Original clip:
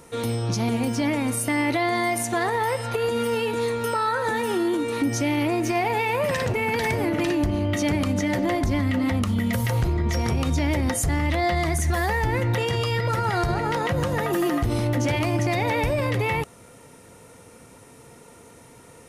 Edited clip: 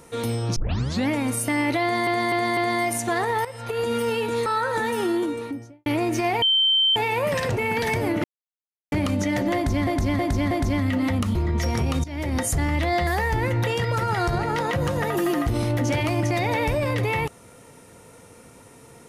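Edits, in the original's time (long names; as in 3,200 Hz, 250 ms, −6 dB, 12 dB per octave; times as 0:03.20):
0:00.56: tape start 0.52 s
0:01.82–0:02.07: repeat, 4 plays
0:02.70–0:03.13: fade in linear, from −14 dB
0:03.71–0:03.97: remove
0:04.60–0:05.37: fade out and dull
0:05.93: insert tone 3,110 Hz −16 dBFS 0.54 s
0:07.21–0:07.89: silence
0:08.52–0:08.84: repeat, 4 plays
0:09.36–0:09.86: remove
0:10.55–0:10.91: fade in, from −18.5 dB
0:11.58–0:11.98: remove
0:12.73–0:12.98: remove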